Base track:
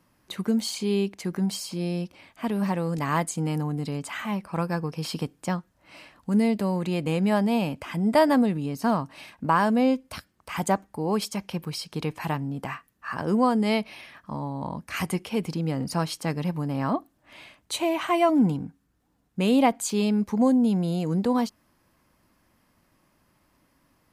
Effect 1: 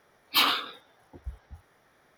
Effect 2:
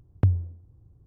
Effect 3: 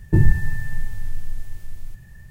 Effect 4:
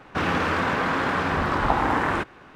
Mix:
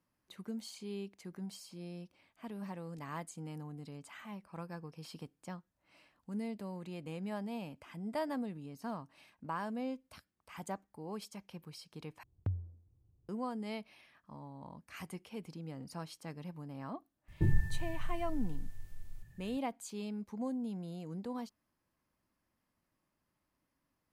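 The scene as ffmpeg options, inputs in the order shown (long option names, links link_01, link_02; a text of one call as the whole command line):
ffmpeg -i bed.wav -i cue0.wav -i cue1.wav -i cue2.wav -filter_complex "[0:a]volume=-17.5dB,asplit=2[link_01][link_02];[link_01]atrim=end=12.234[link_03];[2:a]atrim=end=1.06,asetpts=PTS-STARTPTS,volume=-15dB[link_04];[link_02]atrim=start=13.286[link_05];[3:a]atrim=end=2.3,asetpts=PTS-STARTPTS,volume=-14dB,afade=type=in:duration=0.004:curve=hsin,afade=type=out:start_time=2.296:duration=0.004:curve=hsin,adelay=17280[link_06];[link_03][link_04]acrossfade=duration=0.004:curve1=hsin:curve2=hsin[link_07];[link_07][link_05]acrossfade=duration=0.004:curve1=hsin:curve2=hsin[link_08];[link_08][link_06]amix=inputs=2:normalize=0" out.wav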